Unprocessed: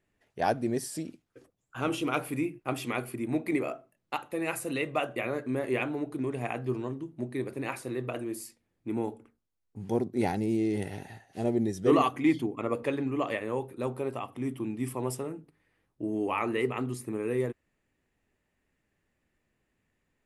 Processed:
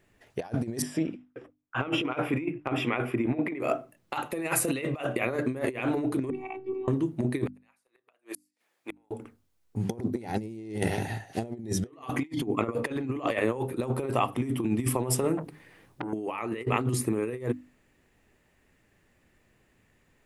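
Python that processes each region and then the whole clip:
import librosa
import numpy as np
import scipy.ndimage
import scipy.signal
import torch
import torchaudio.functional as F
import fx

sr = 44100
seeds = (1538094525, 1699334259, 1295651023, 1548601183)

y = fx.chain(x, sr, fx.gate_hold(open_db=-47.0, close_db=-55.0, hold_ms=71.0, range_db=-21, attack_ms=1.4, release_ms=100.0),
    fx.savgol(points=25),
    fx.low_shelf(hz=180.0, db=-6.5), at=(0.82, 3.6))
y = fx.chain(y, sr, fx.vowel_filter(vowel='u'),
    fx.robotise(hz=379.0), at=(6.3, 6.88))
y = fx.chain(y, sr, fx.highpass(hz=740.0, slope=12),
    fx.gate_flip(shuts_db=-35.0, range_db=-42), at=(7.46, 9.11))
y = fx.chain(y, sr, fx.notch(hz=1300.0, q=21.0),
    fx.over_compress(threshold_db=-41.0, ratio=-1.0),
    fx.transformer_sat(knee_hz=1400.0), at=(15.37, 16.13))
y = fx.peak_eq(y, sr, hz=110.0, db=3.0, octaves=0.29)
y = fx.hum_notches(y, sr, base_hz=50, count=6)
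y = fx.over_compress(y, sr, threshold_db=-35.0, ratio=-0.5)
y = F.gain(torch.from_numpy(y), 6.5).numpy()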